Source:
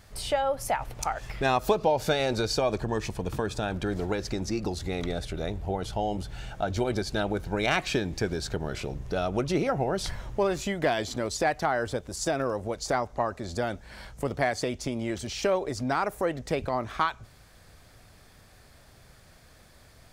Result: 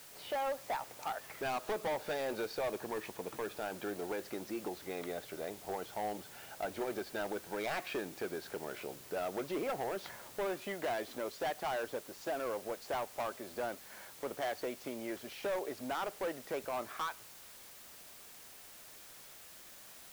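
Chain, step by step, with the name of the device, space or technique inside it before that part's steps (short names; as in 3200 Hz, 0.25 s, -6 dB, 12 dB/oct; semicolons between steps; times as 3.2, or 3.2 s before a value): aircraft radio (BPF 340–2400 Hz; hard clip -26.5 dBFS, distortion -8 dB; white noise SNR 14 dB); gain -5.5 dB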